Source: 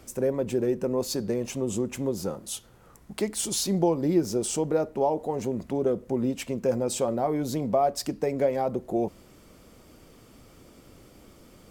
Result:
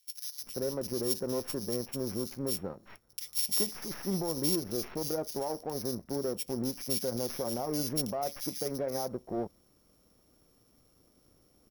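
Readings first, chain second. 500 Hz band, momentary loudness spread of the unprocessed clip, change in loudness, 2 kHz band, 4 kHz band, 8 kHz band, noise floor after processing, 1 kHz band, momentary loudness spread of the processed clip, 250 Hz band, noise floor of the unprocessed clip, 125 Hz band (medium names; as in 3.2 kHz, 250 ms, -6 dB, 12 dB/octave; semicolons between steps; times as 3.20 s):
-9.0 dB, 6 LU, -5.5 dB, -6.5 dB, 0.0 dB, -3.0 dB, -67 dBFS, -10.0 dB, 8 LU, -8.0 dB, -54 dBFS, -7.0 dB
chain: sorted samples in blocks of 8 samples; peak limiter -20 dBFS, peak gain reduction 9 dB; treble shelf 11 kHz +11.5 dB; power-law waveshaper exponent 1.4; bands offset in time highs, lows 390 ms, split 2.3 kHz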